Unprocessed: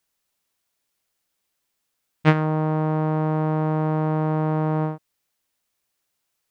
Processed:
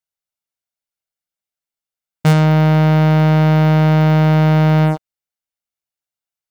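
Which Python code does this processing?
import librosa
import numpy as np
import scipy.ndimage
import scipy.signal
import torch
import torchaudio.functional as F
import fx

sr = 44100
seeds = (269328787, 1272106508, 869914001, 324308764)

y = fx.leveller(x, sr, passes=5)
y = y + 0.3 * np.pad(y, (int(1.4 * sr / 1000.0), 0))[:len(y)]
y = y * librosa.db_to_amplitude(-4.5)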